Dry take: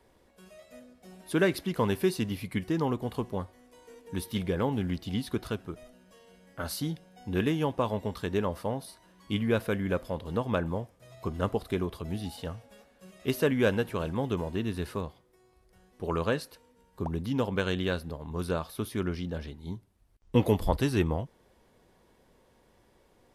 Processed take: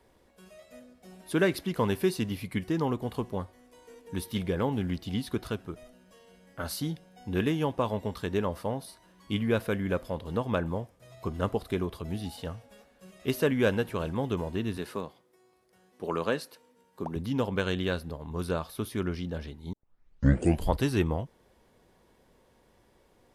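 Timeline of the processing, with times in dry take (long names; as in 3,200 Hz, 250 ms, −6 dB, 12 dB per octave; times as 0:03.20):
0:14.77–0:17.16: high-pass filter 180 Hz
0:19.73: tape start 0.97 s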